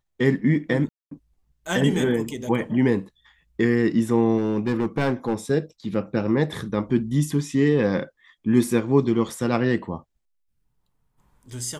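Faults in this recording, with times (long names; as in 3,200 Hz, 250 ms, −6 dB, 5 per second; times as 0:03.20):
0:00.89–0:01.11: drop-out 223 ms
0:04.37–0:05.34: clipping −17 dBFS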